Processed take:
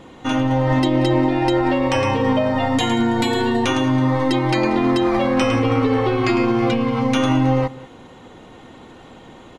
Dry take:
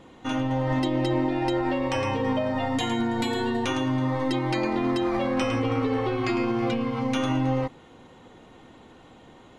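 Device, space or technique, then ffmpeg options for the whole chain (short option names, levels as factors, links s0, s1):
ducked delay: -filter_complex "[0:a]asplit=3[s0][s1][s2];[s1]adelay=184,volume=0.422[s3];[s2]apad=whole_len=430774[s4];[s3][s4]sidechaincompress=threshold=0.0224:ratio=8:attack=16:release=1420[s5];[s0][s5]amix=inputs=2:normalize=0,volume=2.37"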